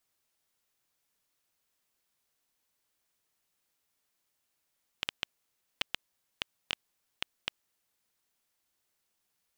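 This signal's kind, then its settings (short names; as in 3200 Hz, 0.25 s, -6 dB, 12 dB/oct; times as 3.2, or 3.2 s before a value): random clicks 3.8/s -12 dBFS 2.77 s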